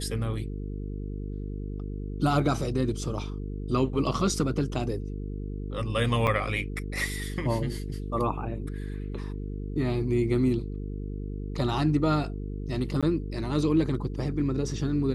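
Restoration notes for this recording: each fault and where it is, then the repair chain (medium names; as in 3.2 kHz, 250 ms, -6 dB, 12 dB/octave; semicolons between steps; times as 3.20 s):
buzz 50 Hz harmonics 9 -34 dBFS
6.27–6.28 s: dropout 6.3 ms
13.01–13.03 s: dropout 16 ms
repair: de-hum 50 Hz, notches 9; interpolate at 6.27 s, 6.3 ms; interpolate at 13.01 s, 16 ms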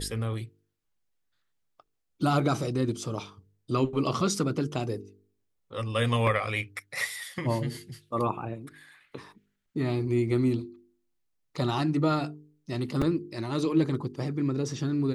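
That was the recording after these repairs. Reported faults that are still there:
nothing left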